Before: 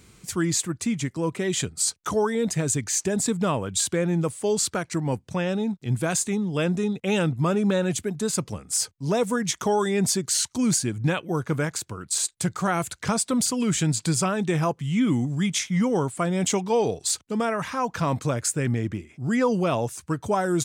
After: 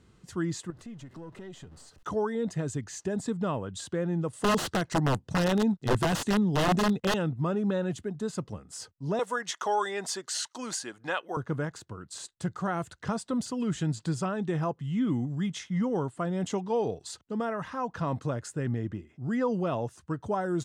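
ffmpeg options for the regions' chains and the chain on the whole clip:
-filter_complex "[0:a]asettb=1/sr,asplit=3[a][b][c];[a]atrim=end=0.704[d];[b]atrim=start=0.7:end=2.03,asetpts=PTS-STARTPTS,afade=t=in:d=0.004:c=qsin,afade=t=out:st=1.326:d=0.004:c=qsin,aeval=exprs='val(0)+0.5*0.0106*sgn(val(0))':c=same,acompressor=threshold=-33dB:ratio=4:attack=3.2:release=140:knee=1:detection=peak,aeval=exprs='(tanh(20*val(0)+0.5)-tanh(0.5))/20':c=same[e];[c]atrim=start=2.026[f];[d][e]acrossfade=d=0.004:c1=hsin:c2=qsin[g];[g][f]acrossfade=d=0.004:c1=qsin:c2=hsin,asettb=1/sr,asplit=3[h][i][j];[h]atrim=end=4.334[k];[i]atrim=start=4.33:end=7.14,asetpts=PTS-STARTPTS,afade=t=in:d=0.004:c=qsin,afade=t=out:st=2.806:d=0.004:c=qsin,bass=f=250:g=0,treble=f=4k:g=4,acontrast=86,aeval=exprs='(mod(3.98*val(0)+1,2)-1)/3.98':c=same[l];[j]atrim=start=7.136[m];[k][l]acrossfade=d=0.004:c1=hsin:c2=qsin[n];[n][m]acrossfade=d=0.004:c1=qsin:c2=hsin,asettb=1/sr,asplit=3[o][p][q];[o]atrim=end=9.194[r];[p]atrim=start=9.19:end=11.37,asetpts=PTS-STARTPTS,afade=t=in:d=0.004:c=qsin,afade=t=out:st=2.176:d=0.004:c=qsin,highpass=710,acontrast=84[s];[q]atrim=start=11.366[t];[r][s]acrossfade=d=0.004:c1=hsin:c2=qsin[u];[u][t]acrossfade=d=0.004:c1=qsin:c2=hsin,aemphasis=mode=reproduction:type=75fm,bandreject=f=2.3k:w=5.6,volume=-6.5dB"

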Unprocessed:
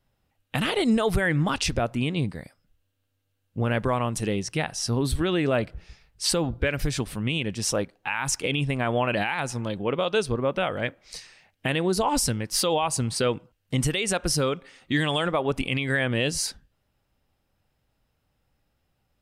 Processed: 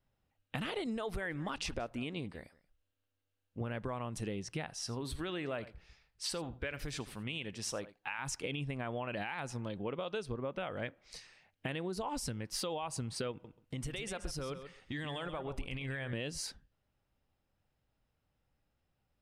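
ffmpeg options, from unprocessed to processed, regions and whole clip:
-filter_complex "[0:a]asettb=1/sr,asplit=3[a][b][c];[a]atrim=end=0.864[d];[b]atrim=start=0.86:end=3.61,asetpts=PTS-STARTPTS,afade=t=in:d=0.004:c=qsin,afade=t=out:st=2.746:d=0.004:c=qsin,equalizer=f=130:t=o:w=1.2:g=-8.5,aecho=1:1:181:0.075,atrim=end_sample=121275[e];[c]atrim=start=3.606[f];[d][e]acrossfade=d=0.004:c1=hsin:c2=qsin[g];[g][f]acrossfade=d=0.004:c1=qsin:c2=hsin,asettb=1/sr,asplit=3[h][i][j];[h]atrim=end=4.734[k];[i]atrim=start=4.73:end=8.19,asetpts=PTS-STARTPTS,afade=t=in:d=0.004:c=qsin,afade=t=out:st=3.456:d=0.004:c=qsin,lowshelf=f=490:g=-7.5,aecho=1:1:83:0.126,atrim=end_sample=152586[l];[j]atrim=start=8.186[m];[k][l]acrossfade=d=0.004:c1=hsin:c2=qsin[n];[n][m]acrossfade=d=0.004:c1=qsin:c2=hsin,asettb=1/sr,asplit=3[o][p][q];[o]atrim=end=13.314[r];[p]atrim=start=13.31:end=16.13,asetpts=PTS-STARTPTS,afade=t=in:d=0.004:c=qsin,afade=t=out:st=2.816:d=0.004:c=qsin,acompressor=threshold=-28dB:ratio=3:attack=3.2:release=140:knee=1:detection=peak,asubboost=boost=6.5:cutoff=87,aecho=1:1:133|266:0.299|0.0448,atrim=end_sample=124362[s];[q]atrim=start=16.126[t];[r][s]acrossfade=d=0.004:c1=hsin:c2=qsin[u];[u][t]acrossfade=d=0.004:c1=qsin:c2=hsin,highshelf=f=6k:g=-7,acompressor=threshold=-27dB:ratio=6,volume=-7.5dB"

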